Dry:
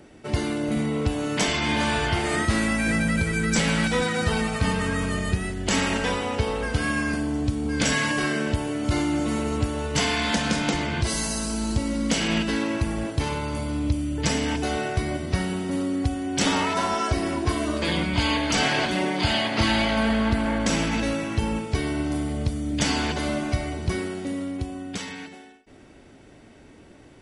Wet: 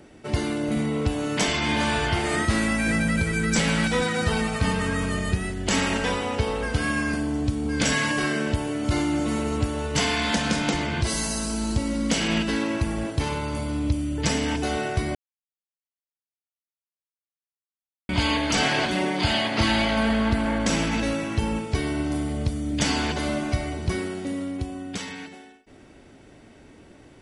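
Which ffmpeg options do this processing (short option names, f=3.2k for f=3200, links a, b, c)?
-filter_complex "[0:a]asplit=3[a][b][c];[a]atrim=end=15.15,asetpts=PTS-STARTPTS,afade=t=out:st=15.146:d=0.004:c=hsin[d];[b]atrim=start=15.15:end=18.09,asetpts=PTS-STARTPTS,volume=0[e];[c]atrim=start=18.09,asetpts=PTS-STARTPTS,afade=t=in:d=0.004:c=hsin[f];[d][e][f]concat=n=3:v=0:a=1"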